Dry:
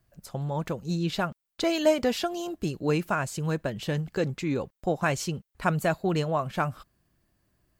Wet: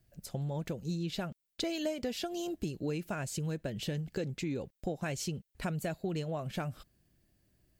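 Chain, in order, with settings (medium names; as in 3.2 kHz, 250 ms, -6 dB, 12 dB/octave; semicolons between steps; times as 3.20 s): peaking EQ 1.1 kHz -11 dB 1 oct; compression 4:1, threshold -33 dBFS, peak gain reduction 12 dB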